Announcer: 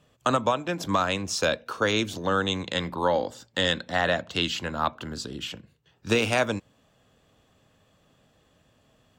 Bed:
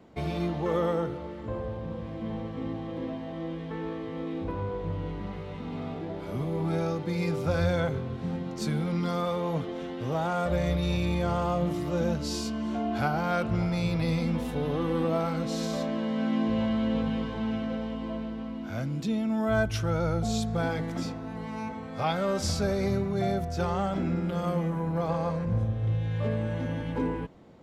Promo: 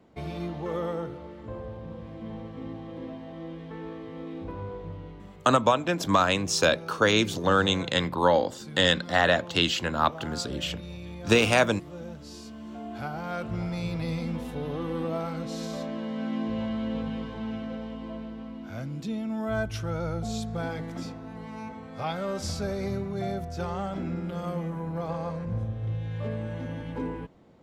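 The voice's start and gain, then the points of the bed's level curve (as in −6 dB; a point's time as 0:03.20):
5.20 s, +2.5 dB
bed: 0:04.71 −4 dB
0:05.46 −12.5 dB
0:12.21 −12.5 dB
0:13.69 −3.5 dB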